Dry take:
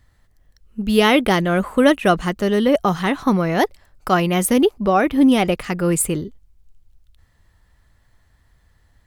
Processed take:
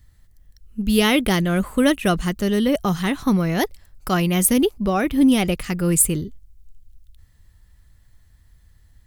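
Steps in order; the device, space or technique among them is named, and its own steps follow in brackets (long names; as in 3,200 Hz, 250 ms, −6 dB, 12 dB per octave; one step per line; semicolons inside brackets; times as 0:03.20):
smiley-face EQ (low-shelf EQ 130 Hz +6 dB; parametric band 790 Hz −7 dB 2.6 octaves; high-shelf EQ 7,800 Hz +7.5 dB)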